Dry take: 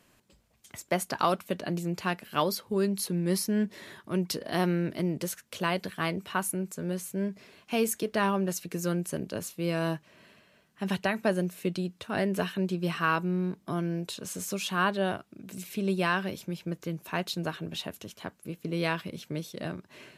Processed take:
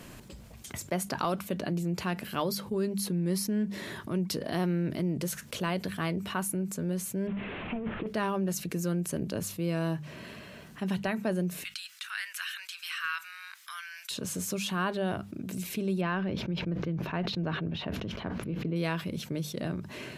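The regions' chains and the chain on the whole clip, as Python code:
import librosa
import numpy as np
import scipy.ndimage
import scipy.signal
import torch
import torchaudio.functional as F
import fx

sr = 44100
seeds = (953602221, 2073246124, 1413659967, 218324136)

y = fx.chain(x, sr, fx.delta_mod(bps=16000, step_db=-42.0),
    fx.over_compress(threshold_db=-33.0, ratio=-0.5), at=(7.27, 8.07))
y = fx.chain(y, sr, fx.steep_highpass(hz=1400.0, slope=36),
    fx.clip_hard(threshold_db=-20.0), at=(11.64, 14.11))
y = fx.chain(y, sr, fx.air_absorb(metres=290.0),
    fx.sustainer(db_per_s=57.0), at=(16.01, 18.76))
y = fx.low_shelf(y, sr, hz=280.0, db=8.5)
y = fx.hum_notches(y, sr, base_hz=50, count=4)
y = fx.env_flatten(y, sr, amount_pct=50)
y = F.gain(torch.from_numpy(y), -7.5).numpy()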